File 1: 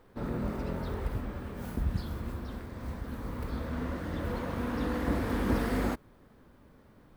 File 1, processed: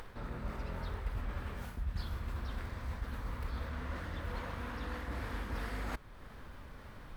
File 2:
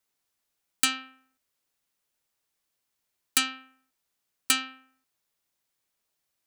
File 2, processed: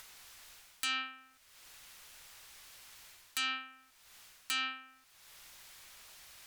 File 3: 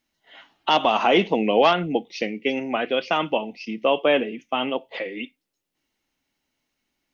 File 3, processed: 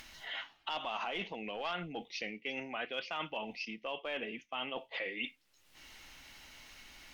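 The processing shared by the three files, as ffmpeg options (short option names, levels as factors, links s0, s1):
-filter_complex "[0:a]asplit=2[s0][s1];[s1]aeval=exprs='clip(val(0),-1,0.2)':c=same,volume=0.631[s2];[s0][s2]amix=inputs=2:normalize=0,alimiter=limit=0.299:level=0:latency=1:release=67,areverse,acompressor=threshold=0.0158:ratio=5,areverse,aemphasis=mode=reproduction:type=cd,acompressor=mode=upward:threshold=0.00891:ratio=2.5,equalizer=f=280:w=0.38:g=-14.5,volume=2"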